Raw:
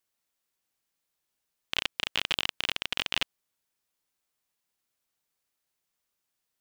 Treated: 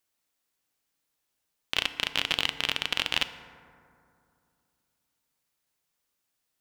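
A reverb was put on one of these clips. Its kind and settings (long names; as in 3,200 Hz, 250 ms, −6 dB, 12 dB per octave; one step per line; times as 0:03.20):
feedback delay network reverb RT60 2.5 s, low-frequency decay 1.2×, high-frequency decay 0.35×, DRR 10 dB
level +2 dB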